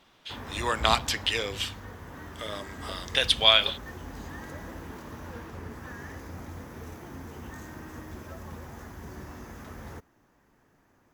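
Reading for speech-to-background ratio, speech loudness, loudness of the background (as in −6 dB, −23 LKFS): 17.0 dB, −24.5 LKFS, −41.5 LKFS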